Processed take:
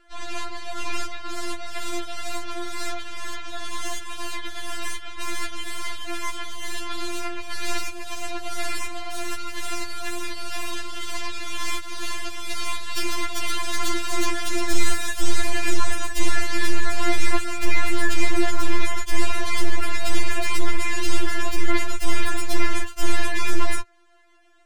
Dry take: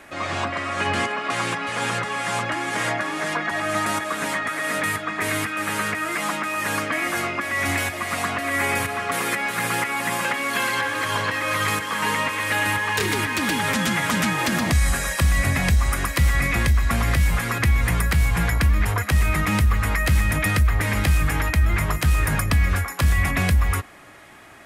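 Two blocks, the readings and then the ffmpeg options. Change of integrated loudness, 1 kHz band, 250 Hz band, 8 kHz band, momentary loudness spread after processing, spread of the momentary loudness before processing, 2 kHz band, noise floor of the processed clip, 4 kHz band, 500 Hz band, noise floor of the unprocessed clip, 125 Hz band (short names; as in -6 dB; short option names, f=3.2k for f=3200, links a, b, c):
-7.0 dB, -6.5 dB, -4.5 dB, -2.0 dB, 8 LU, 4 LU, -7.0 dB, -31 dBFS, -1.5 dB, -3.5 dB, -31 dBFS, -13.5 dB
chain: -filter_complex "[0:a]acrossover=split=280|3100[a][b][c];[a]acrusher=bits=5:mode=log:mix=0:aa=0.000001[d];[b]alimiter=limit=-22.5dB:level=0:latency=1:release=206[e];[d][e][c]amix=inputs=3:normalize=0,lowpass=f=8.6k:w=0.5412,lowpass=f=8.6k:w=1.3066,aeval=exprs='0.355*(cos(1*acos(clip(val(0)/0.355,-1,1)))-cos(1*PI/2))+0.112*(cos(6*acos(clip(val(0)/0.355,-1,1)))-cos(6*PI/2))+0.0398*(cos(7*acos(clip(val(0)/0.355,-1,1)))-cos(7*PI/2))':c=same,afftfilt=real='re*4*eq(mod(b,16),0)':imag='im*4*eq(mod(b,16),0)':win_size=2048:overlap=0.75"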